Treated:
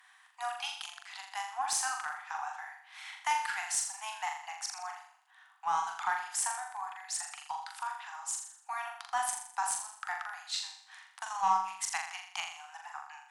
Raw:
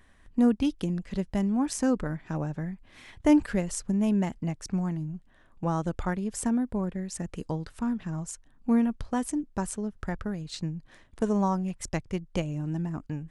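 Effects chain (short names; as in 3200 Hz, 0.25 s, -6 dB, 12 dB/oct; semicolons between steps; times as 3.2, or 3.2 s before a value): Chebyshev high-pass 740 Hz, order 8; added harmonics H 2 -20 dB, 5 -20 dB, 6 -43 dB, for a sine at -15 dBFS; flutter echo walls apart 7.1 m, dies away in 0.6 s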